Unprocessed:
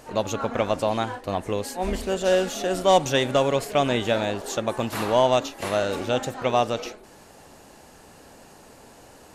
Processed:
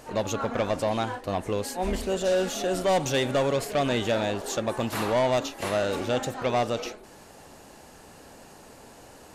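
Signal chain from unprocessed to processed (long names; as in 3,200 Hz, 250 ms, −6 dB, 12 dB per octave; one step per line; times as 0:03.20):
soft clipping −18 dBFS, distortion −11 dB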